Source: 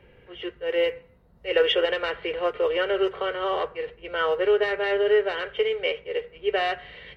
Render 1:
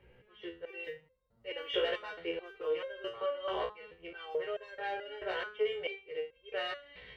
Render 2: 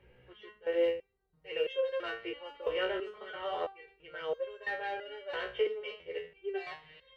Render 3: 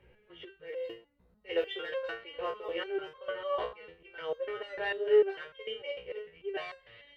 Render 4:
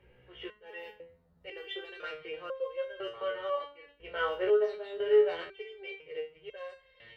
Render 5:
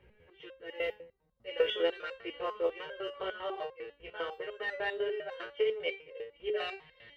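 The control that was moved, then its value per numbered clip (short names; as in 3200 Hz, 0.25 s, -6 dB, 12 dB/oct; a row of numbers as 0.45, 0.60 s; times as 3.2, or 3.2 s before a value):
stepped resonator, rate: 4.6, 3, 6.7, 2, 10 Hz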